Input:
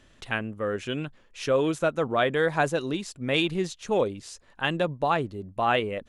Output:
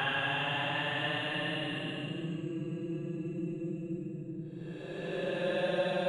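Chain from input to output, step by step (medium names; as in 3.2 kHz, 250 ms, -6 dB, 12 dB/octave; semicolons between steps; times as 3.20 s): Paulstretch 35×, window 0.05 s, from 4.65 s; trim -8.5 dB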